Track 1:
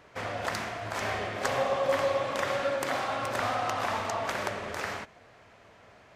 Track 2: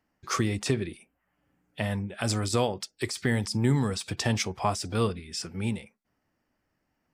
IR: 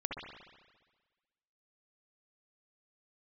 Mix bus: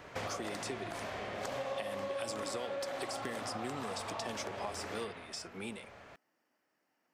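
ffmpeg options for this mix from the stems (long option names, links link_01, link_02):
-filter_complex "[0:a]acompressor=threshold=-39dB:ratio=3,volume=1dB,asplit=2[link_01][link_02];[link_02]volume=-5dB[link_03];[1:a]highpass=340,acompressor=threshold=-42dB:ratio=2,volume=0dB,asplit=2[link_04][link_05];[link_05]apad=whole_len=271559[link_06];[link_01][link_06]sidechaincompress=threshold=-47dB:ratio=8:attack=16:release=1320[link_07];[2:a]atrim=start_sample=2205[link_08];[link_03][link_08]afir=irnorm=-1:irlink=0[link_09];[link_07][link_04][link_09]amix=inputs=3:normalize=0,acrossover=split=1000|2400[link_10][link_11][link_12];[link_10]acompressor=threshold=-36dB:ratio=4[link_13];[link_11]acompressor=threshold=-51dB:ratio=4[link_14];[link_12]acompressor=threshold=-41dB:ratio=4[link_15];[link_13][link_14][link_15]amix=inputs=3:normalize=0"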